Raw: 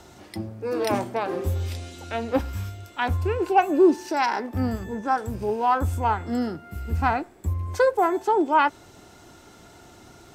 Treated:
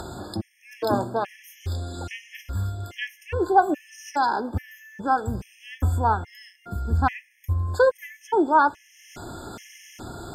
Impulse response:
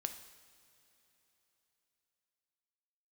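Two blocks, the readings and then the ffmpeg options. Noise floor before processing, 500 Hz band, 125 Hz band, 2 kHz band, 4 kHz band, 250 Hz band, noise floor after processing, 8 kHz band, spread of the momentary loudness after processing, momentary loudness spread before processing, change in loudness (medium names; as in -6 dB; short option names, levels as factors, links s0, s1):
-50 dBFS, -2.5 dB, +1.0 dB, -0.5 dB, -1.5 dB, -4.0 dB, -58 dBFS, -0.5 dB, 20 LU, 13 LU, -1.0 dB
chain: -filter_complex "[0:a]bandreject=f=3900:w=14,acompressor=mode=upward:threshold=0.0398:ratio=2.5,asplit=2[s0][s1];[s1]bass=f=250:g=8,treble=f=4000:g=1[s2];[1:a]atrim=start_sample=2205[s3];[s2][s3]afir=irnorm=-1:irlink=0,volume=0.251[s4];[s0][s4]amix=inputs=2:normalize=0,afftfilt=real='re*gt(sin(2*PI*1.2*pts/sr)*(1-2*mod(floor(b*sr/1024/1700),2)),0)':imag='im*gt(sin(2*PI*1.2*pts/sr)*(1-2*mod(floor(b*sr/1024/1700),2)),0)':win_size=1024:overlap=0.75"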